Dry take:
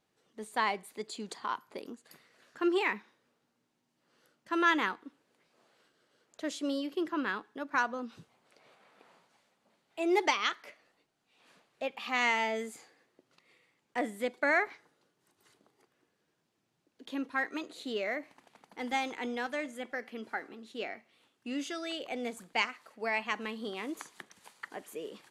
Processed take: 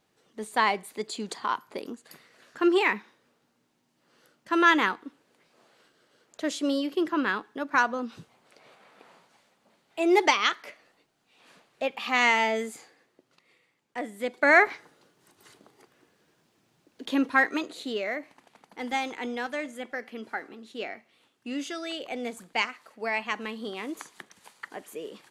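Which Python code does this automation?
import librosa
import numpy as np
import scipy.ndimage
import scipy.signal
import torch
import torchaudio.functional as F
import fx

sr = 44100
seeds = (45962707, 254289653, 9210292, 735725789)

y = fx.gain(x, sr, db=fx.line((12.49, 6.5), (14.08, -1.5), (14.62, 11.0), (17.34, 11.0), (18.02, 3.0)))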